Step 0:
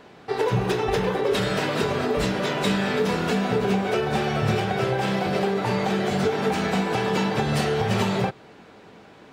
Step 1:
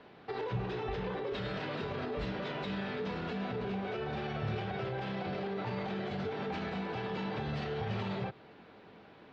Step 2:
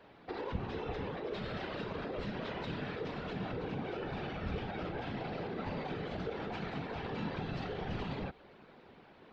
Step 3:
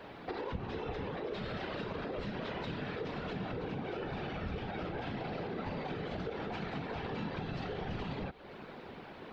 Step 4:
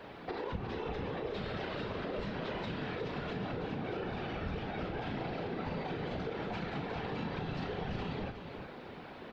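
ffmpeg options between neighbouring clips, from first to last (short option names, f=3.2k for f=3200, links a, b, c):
-filter_complex "[0:a]acrossover=split=100[a][b];[b]alimiter=limit=-22dB:level=0:latency=1:release=62[c];[a][c]amix=inputs=2:normalize=0,lowpass=f=4.4k:w=0.5412,lowpass=f=4.4k:w=1.3066,volume=-7.5dB"
-af "afftfilt=real='hypot(re,im)*cos(2*PI*random(0))':imag='hypot(re,im)*sin(2*PI*random(1))':win_size=512:overlap=0.75,volume=3.5dB"
-af "acompressor=threshold=-50dB:ratio=2.5,volume=9.5dB"
-filter_complex "[0:a]asplit=2[a][b];[b]adelay=36,volume=-11dB[c];[a][c]amix=inputs=2:normalize=0,asplit=2[d][e];[e]aecho=0:1:361:0.376[f];[d][f]amix=inputs=2:normalize=0"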